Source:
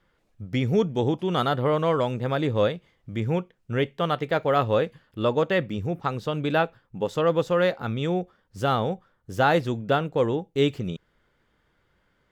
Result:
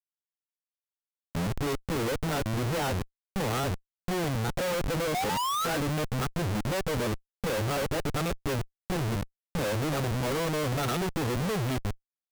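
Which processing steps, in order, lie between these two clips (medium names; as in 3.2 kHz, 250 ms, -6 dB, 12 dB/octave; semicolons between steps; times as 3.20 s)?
reverse the whole clip; painted sound rise, 5.14–5.79 s, 700–1600 Hz -30 dBFS; Schmitt trigger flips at -33.5 dBFS; trim -3 dB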